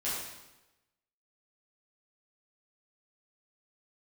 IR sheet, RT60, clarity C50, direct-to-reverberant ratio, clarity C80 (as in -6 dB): 1.0 s, -0.5 dB, -10.5 dB, 2.5 dB